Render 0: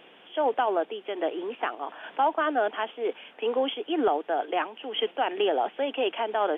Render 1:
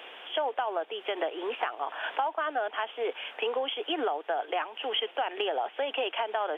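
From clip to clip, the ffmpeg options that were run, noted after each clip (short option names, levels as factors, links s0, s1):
-af "highpass=560,acompressor=threshold=0.0158:ratio=6,volume=2.66"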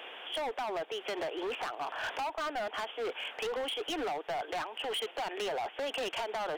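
-af "asoftclip=type=hard:threshold=0.0251"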